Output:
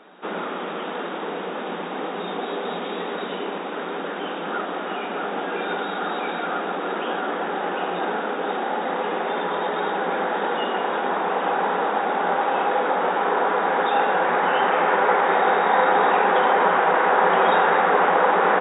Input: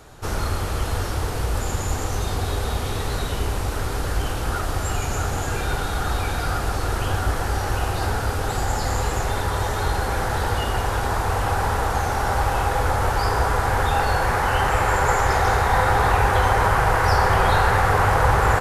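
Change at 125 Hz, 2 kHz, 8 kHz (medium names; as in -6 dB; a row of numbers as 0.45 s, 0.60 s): -20.5 dB, +0.5 dB, under -40 dB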